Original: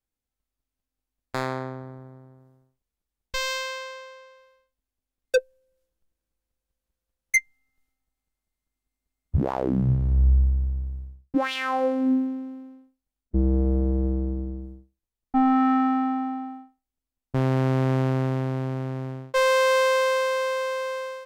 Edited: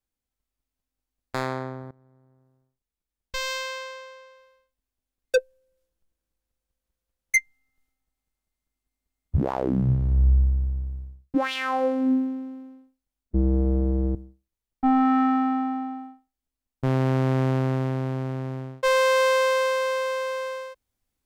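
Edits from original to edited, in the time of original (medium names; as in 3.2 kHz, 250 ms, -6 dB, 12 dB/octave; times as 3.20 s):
1.91–3.79 s: fade in, from -19.5 dB
14.15–14.66 s: delete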